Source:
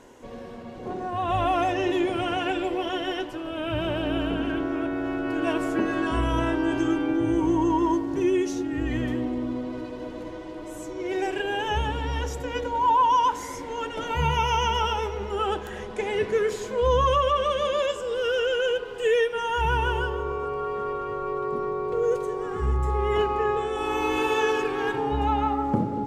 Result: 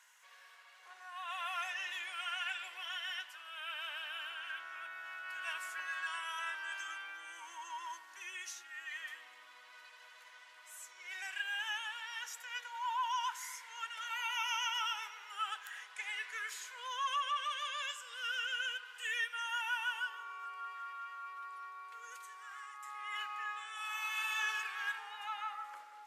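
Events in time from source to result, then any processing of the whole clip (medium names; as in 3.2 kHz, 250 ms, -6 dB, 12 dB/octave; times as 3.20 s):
20.73–24.39 s: bass shelf 420 Hz -10 dB
whole clip: high-pass 1.5 kHz 24 dB/octave; peaking EQ 3.9 kHz -7.5 dB 2.8 oct; trim +1 dB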